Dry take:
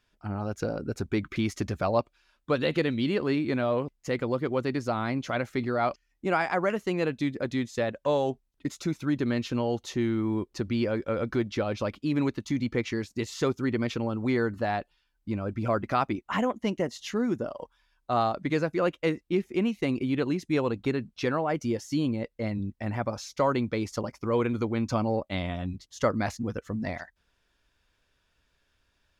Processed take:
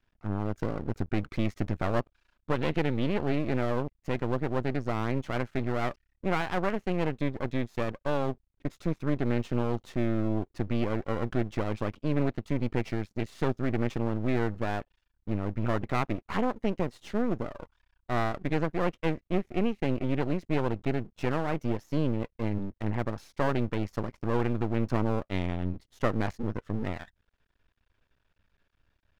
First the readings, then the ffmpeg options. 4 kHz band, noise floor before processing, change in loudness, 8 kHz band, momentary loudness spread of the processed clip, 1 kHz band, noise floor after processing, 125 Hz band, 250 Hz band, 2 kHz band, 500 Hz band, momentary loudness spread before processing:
−5.5 dB, −74 dBFS, −2.0 dB, below −10 dB, 5 LU, −3.0 dB, −77 dBFS, +1.5 dB, −2.0 dB, −3.0 dB, −3.0 dB, 7 LU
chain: -af "bass=frequency=250:gain=5,treble=frequency=4000:gain=-14,aeval=exprs='max(val(0),0)':channel_layout=same"

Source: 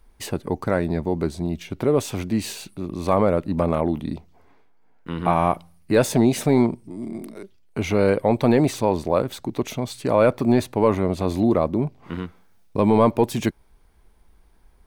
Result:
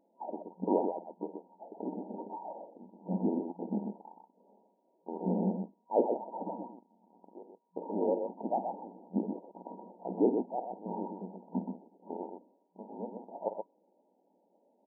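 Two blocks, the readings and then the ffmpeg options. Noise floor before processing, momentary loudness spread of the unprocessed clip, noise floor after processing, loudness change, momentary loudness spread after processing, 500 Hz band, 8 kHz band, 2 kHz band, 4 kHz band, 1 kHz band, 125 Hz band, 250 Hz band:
−55 dBFS, 15 LU, −73 dBFS, −14.0 dB, 18 LU, −14.0 dB, below −40 dB, below −40 dB, below −40 dB, −12.5 dB, −19.5 dB, −14.0 dB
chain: -af "afftfilt=real='real(if(lt(b,960),b+48*(1-2*mod(floor(b/48),2)),b),0)':imag='imag(if(lt(b,960),b+48*(1-2*mod(floor(b/48),2)),b),0)':win_size=2048:overlap=0.75,aecho=1:1:49.56|125.4:0.282|0.501,afftfilt=real='re*between(b*sr/4096,180,960)':imag='im*between(b*sr/4096,180,960)':win_size=4096:overlap=0.75,volume=5dB"

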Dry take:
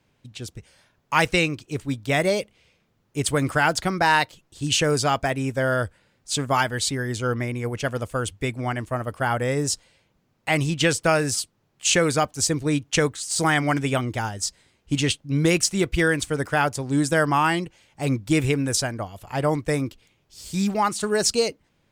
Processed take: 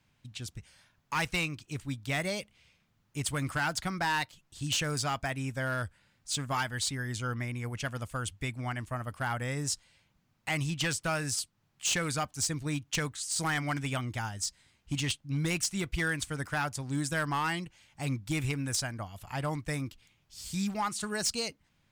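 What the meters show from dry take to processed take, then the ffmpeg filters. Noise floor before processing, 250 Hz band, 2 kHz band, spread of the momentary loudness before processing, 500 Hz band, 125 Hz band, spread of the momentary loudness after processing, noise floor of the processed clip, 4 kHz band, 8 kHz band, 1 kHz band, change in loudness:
−68 dBFS, −11.0 dB, −8.5 dB, 10 LU, −15.5 dB, −7.5 dB, 9 LU, −72 dBFS, −8.0 dB, −7.5 dB, −10.5 dB, −9.5 dB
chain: -filter_complex "[0:a]equalizer=frequency=440:width=1.1:gain=-10.5,asplit=2[link_01][link_02];[link_02]acompressor=threshold=-35dB:ratio=6,volume=0dB[link_03];[link_01][link_03]amix=inputs=2:normalize=0,volume=15.5dB,asoftclip=hard,volume=-15.5dB,volume=-8.5dB"

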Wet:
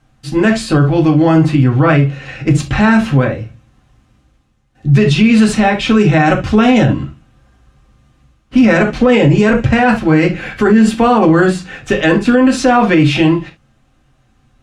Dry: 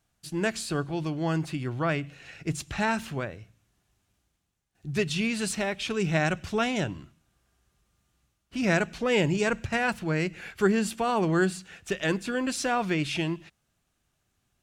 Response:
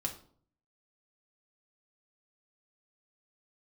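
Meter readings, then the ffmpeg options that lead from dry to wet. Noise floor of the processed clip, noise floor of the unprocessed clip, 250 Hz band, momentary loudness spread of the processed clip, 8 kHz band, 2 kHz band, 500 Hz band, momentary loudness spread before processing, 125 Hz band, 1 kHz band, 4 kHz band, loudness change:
−55 dBFS, −76 dBFS, +19.0 dB, 7 LU, +7.5 dB, +13.0 dB, +15.0 dB, 10 LU, +19.0 dB, +16.0 dB, +12.0 dB, +16.5 dB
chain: -filter_complex "[0:a]aemphasis=mode=reproduction:type=75fm[link_01];[1:a]atrim=start_sample=2205,atrim=end_sample=3528[link_02];[link_01][link_02]afir=irnorm=-1:irlink=0,alimiter=level_in=18.5dB:limit=-1dB:release=50:level=0:latency=1,volume=-1dB"

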